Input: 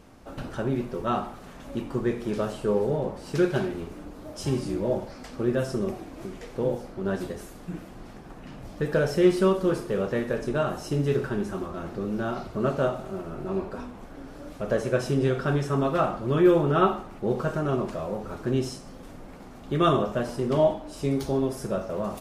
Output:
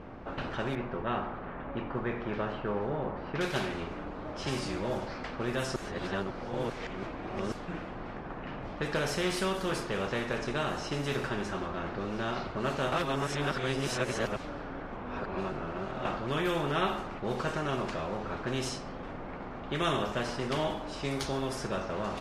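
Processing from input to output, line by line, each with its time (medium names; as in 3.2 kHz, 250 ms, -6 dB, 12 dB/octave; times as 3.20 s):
0.75–3.41 s: low-pass 1.9 kHz
5.76–7.52 s: reverse
12.92–16.05 s: reverse
whole clip: level-controlled noise filter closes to 2.1 kHz, open at -20 dBFS; treble shelf 5.4 kHz -7 dB; spectrum-flattening compressor 2:1; trim -8 dB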